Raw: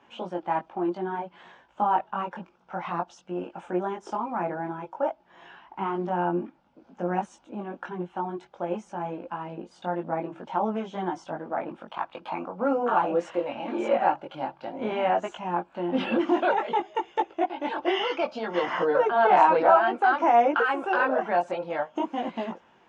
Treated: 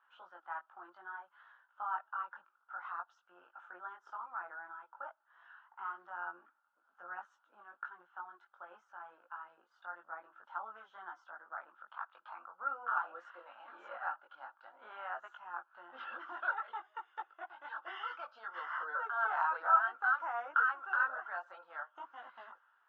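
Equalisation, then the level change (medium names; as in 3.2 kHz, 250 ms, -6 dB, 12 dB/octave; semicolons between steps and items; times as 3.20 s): ladder band-pass 1.5 kHz, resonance 70%; peaking EQ 2.3 kHz -12.5 dB 0.49 oct; 0.0 dB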